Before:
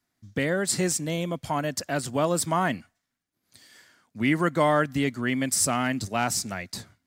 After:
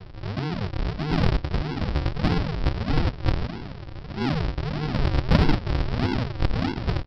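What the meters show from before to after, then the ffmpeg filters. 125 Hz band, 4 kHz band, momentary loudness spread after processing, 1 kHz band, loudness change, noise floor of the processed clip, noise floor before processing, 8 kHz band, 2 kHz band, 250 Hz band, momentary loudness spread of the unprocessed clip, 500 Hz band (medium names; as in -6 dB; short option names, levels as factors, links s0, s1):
+8.5 dB, 0.0 dB, 8 LU, -3.5 dB, -0.5 dB, -38 dBFS, -81 dBFS, under -25 dB, -4.0 dB, +1.0 dB, 7 LU, -4.0 dB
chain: -filter_complex "[0:a]aeval=exprs='val(0)+0.5*0.0447*sgn(val(0))':c=same,lowpass=2500,acrossover=split=250|1700[s0][s1][s2];[s2]adelay=140[s3];[s1]adelay=730[s4];[s0][s4][s3]amix=inputs=3:normalize=0,aresample=11025,acrusher=samples=35:mix=1:aa=0.000001:lfo=1:lforange=35:lforate=1.6,aresample=44100,aeval=exprs='0.316*(cos(1*acos(clip(val(0)/0.316,-1,1)))-cos(1*PI/2))+0.00562*(cos(8*acos(clip(val(0)/0.316,-1,1)))-cos(8*PI/2))':c=same,volume=1.41"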